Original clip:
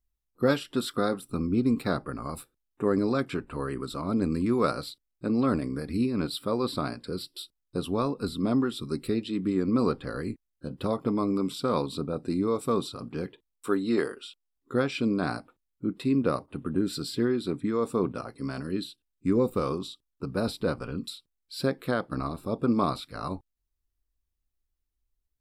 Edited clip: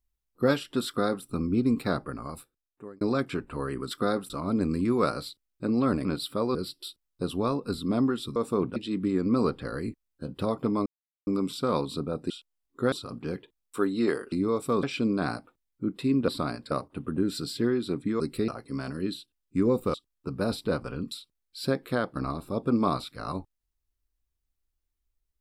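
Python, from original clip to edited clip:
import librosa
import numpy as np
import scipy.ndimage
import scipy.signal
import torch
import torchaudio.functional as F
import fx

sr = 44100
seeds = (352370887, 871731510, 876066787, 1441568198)

y = fx.edit(x, sr, fx.duplicate(start_s=0.87, length_s=0.39, to_s=3.91),
    fx.fade_out_span(start_s=2.02, length_s=0.99),
    fx.cut(start_s=5.66, length_s=0.5),
    fx.move(start_s=6.66, length_s=0.43, to_s=16.29),
    fx.swap(start_s=8.9, length_s=0.28, other_s=17.78, other_length_s=0.4),
    fx.insert_silence(at_s=11.28, length_s=0.41),
    fx.swap(start_s=12.31, length_s=0.51, other_s=14.22, other_length_s=0.62),
    fx.cut(start_s=19.64, length_s=0.26), tone=tone)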